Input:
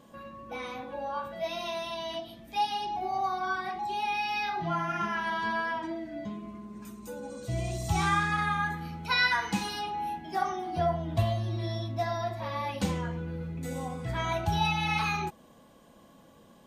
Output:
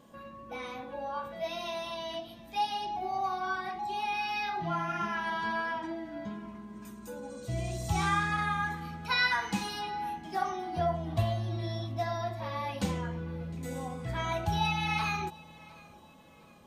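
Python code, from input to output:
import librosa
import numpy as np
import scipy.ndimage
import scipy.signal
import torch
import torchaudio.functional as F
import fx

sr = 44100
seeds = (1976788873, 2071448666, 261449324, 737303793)

y = fx.echo_feedback(x, sr, ms=709, feedback_pct=39, wet_db=-22)
y = y * librosa.db_to_amplitude(-2.0)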